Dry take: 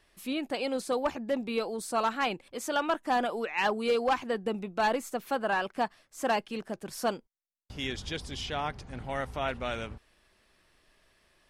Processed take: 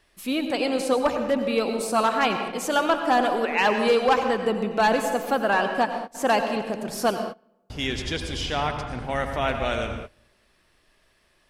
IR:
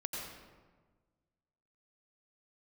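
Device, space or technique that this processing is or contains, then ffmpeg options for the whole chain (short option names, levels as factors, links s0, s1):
keyed gated reverb: -filter_complex "[0:a]asplit=3[s0][s1][s2];[1:a]atrim=start_sample=2205[s3];[s1][s3]afir=irnorm=-1:irlink=0[s4];[s2]apad=whole_len=507125[s5];[s4][s5]sidechaingate=range=0.0708:threshold=0.00224:ratio=16:detection=peak,volume=0.944[s6];[s0][s6]amix=inputs=2:normalize=0,volume=1.26"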